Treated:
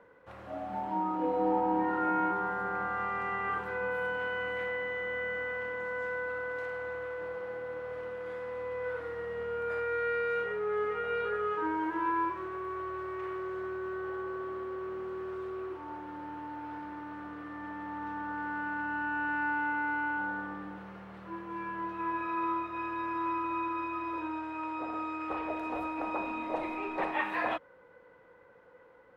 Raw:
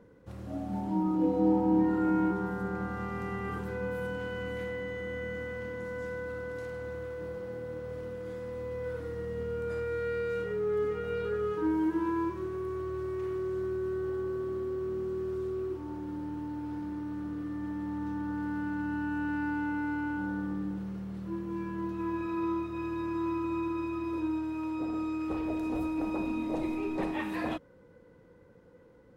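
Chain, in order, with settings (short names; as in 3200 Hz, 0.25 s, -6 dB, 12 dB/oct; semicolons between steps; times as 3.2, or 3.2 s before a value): three-band isolator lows -20 dB, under 580 Hz, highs -18 dB, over 2900 Hz; gain +8 dB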